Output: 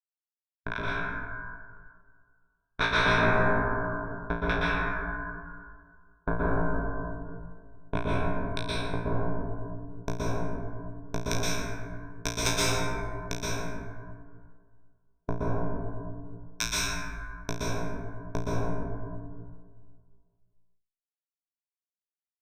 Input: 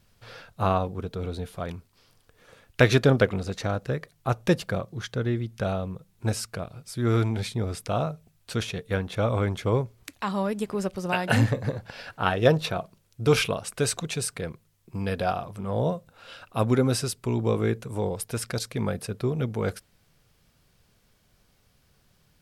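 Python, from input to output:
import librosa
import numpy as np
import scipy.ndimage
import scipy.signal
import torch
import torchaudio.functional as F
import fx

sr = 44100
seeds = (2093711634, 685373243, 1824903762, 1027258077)

y = fx.band_invert(x, sr, width_hz=1000)
y = fx.rider(y, sr, range_db=4, speed_s=0.5)
y = fx.schmitt(y, sr, flips_db=-12.5)
y = fx.filter_sweep_lowpass(y, sr, from_hz=1100.0, to_hz=4600.0, start_s=6.25, end_s=9.57, q=4.0)
y = 10.0 ** (-18.5 / 20.0) * np.tanh(y / 10.0 ** (-18.5 / 20.0))
y = fx.formant_shift(y, sr, semitones=6)
y = fx.ripple_eq(y, sr, per_octave=1.6, db=16)
y = fx.harmonic_tremolo(y, sr, hz=1.9, depth_pct=100, crossover_hz=1200.0)
y = fx.room_flutter(y, sr, wall_m=3.0, rt60_s=0.35)
y = fx.rev_plate(y, sr, seeds[0], rt60_s=1.9, hf_ratio=0.35, predelay_ms=110, drr_db=-8.0)
y = fx.spectral_comp(y, sr, ratio=2.0)
y = y * librosa.db_to_amplitude(-3.0)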